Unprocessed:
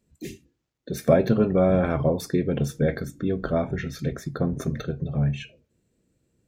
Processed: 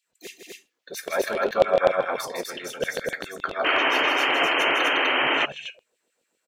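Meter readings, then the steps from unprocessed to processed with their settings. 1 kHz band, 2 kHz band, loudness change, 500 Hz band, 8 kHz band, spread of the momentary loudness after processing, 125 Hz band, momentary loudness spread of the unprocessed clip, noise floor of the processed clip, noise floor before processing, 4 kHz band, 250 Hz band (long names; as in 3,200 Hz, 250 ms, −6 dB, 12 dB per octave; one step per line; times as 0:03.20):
+10.0 dB, +16.0 dB, +2.0 dB, 0.0 dB, +4.5 dB, 16 LU, −23.0 dB, 15 LU, −77 dBFS, −76 dBFS, +18.0 dB, −10.5 dB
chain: auto-filter high-pass saw down 7.4 Hz 510–3,500 Hz
loudspeakers that aren't time-aligned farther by 54 metres −6 dB, 86 metres −2 dB
sound drawn into the spectrogram noise, 0:03.64–0:05.46, 250–3,200 Hz −23 dBFS
level +1 dB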